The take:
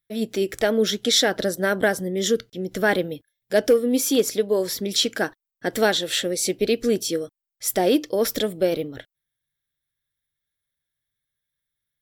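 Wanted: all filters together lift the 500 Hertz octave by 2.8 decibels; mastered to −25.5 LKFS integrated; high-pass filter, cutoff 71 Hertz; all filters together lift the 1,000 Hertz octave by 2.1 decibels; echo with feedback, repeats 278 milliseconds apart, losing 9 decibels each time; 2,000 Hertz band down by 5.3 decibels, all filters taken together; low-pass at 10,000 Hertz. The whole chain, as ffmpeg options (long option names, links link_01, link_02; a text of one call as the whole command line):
ffmpeg -i in.wav -af "highpass=71,lowpass=10000,equalizer=frequency=500:width_type=o:gain=3,equalizer=frequency=1000:width_type=o:gain=3.5,equalizer=frequency=2000:width_type=o:gain=-9,aecho=1:1:278|556|834|1112:0.355|0.124|0.0435|0.0152,volume=-4.5dB" out.wav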